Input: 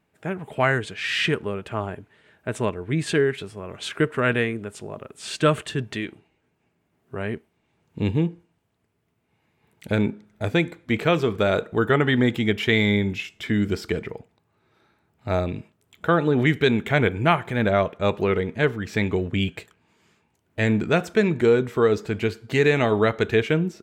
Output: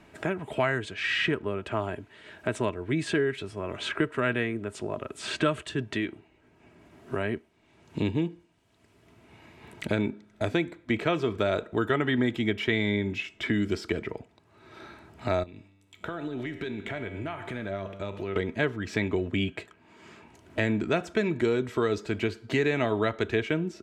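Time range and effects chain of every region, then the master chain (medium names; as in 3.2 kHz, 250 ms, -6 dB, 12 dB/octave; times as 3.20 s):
15.43–18.36 s: band-stop 1.1 kHz, Q 16 + compression, threshold -28 dBFS + feedback comb 98 Hz, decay 1 s, mix 70%
whole clip: Bessel low-pass 8 kHz, order 2; comb 3.1 ms, depth 36%; three bands compressed up and down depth 70%; trim -5 dB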